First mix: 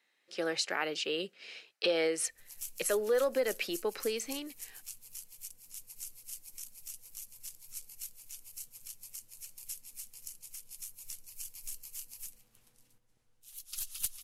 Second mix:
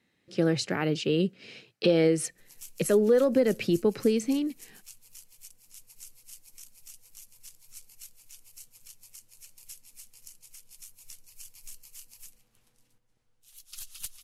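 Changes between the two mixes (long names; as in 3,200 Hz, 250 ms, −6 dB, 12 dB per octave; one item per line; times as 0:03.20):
speech: remove high-pass filter 680 Hz 12 dB per octave
background: add high-shelf EQ 9,500 Hz −8 dB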